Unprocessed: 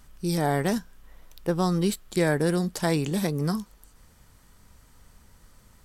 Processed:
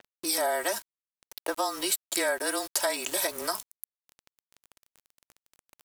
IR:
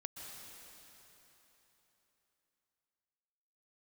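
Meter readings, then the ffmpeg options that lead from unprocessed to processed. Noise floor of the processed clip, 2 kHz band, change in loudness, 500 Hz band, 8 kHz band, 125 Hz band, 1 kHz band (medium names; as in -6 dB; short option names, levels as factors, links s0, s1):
under -85 dBFS, +1.5 dB, -2.5 dB, -3.5 dB, +8.5 dB, under -35 dB, -0.5 dB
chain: -filter_complex "[0:a]highpass=f=540:w=0.5412,highpass=f=540:w=1.3066,aecho=1:1:3.1:0.68,acrossover=split=830|1100[s0][s1][s2];[s0]acompressor=mode=upward:threshold=0.01:ratio=2.5[s3];[s3][s1][s2]amix=inputs=3:normalize=0,afreqshift=-28,aeval=exprs='val(0)*gte(abs(val(0)),0.00631)':c=same,acompressor=threshold=0.02:ratio=3,adynamicequalizer=threshold=0.00224:dfrequency=7100:dqfactor=0.7:tfrequency=7100:tqfactor=0.7:attack=5:release=100:ratio=0.375:range=3.5:mode=boostabove:tftype=highshelf,volume=2.11"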